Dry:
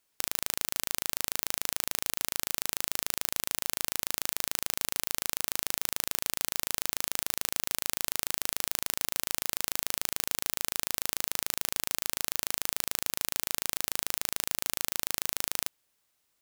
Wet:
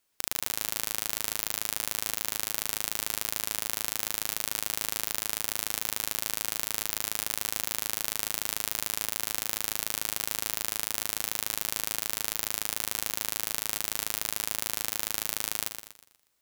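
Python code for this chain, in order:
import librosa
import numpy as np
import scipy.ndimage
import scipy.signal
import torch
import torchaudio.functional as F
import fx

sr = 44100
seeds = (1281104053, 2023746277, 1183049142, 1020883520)

y = fx.echo_feedback(x, sr, ms=121, feedback_pct=40, wet_db=-8.0)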